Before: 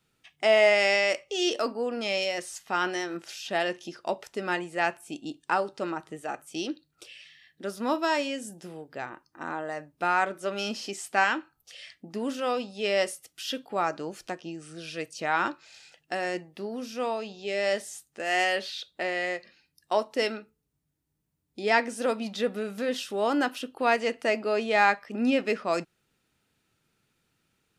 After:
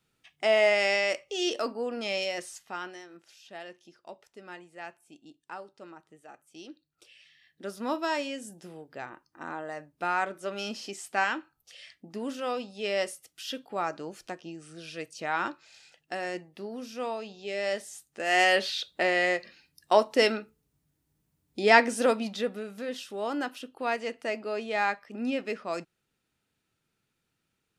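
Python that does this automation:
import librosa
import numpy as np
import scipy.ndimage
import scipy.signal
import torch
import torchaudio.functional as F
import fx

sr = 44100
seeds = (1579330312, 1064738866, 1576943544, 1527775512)

y = fx.gain(x, sr, db=fx.line((2.45, -2.5), (3.04, -15.5), (6.45, -15.5), (7.66, -3.5), (17.9, -3.5), (18.55, 4.5), (21.99, 4.5), (22.67, -6.0)))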